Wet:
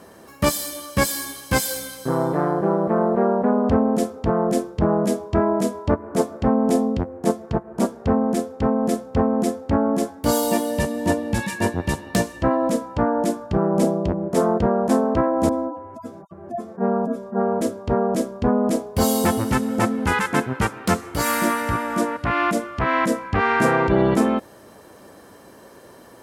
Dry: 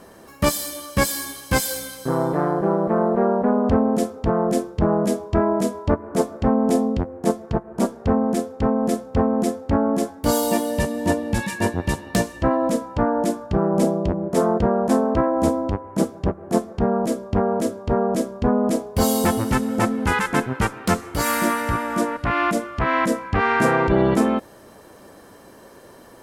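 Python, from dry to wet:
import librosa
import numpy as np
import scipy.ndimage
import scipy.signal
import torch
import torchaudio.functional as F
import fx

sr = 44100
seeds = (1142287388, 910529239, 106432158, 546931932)

y = fx.hpss_only(x, sr, part='harmonic', at=(15.49, 17.61))
y = scipy.signal.sosfilt(scipy.signal.butter(2, 54.0, 'highpass', fs=sr, output='sos'), y)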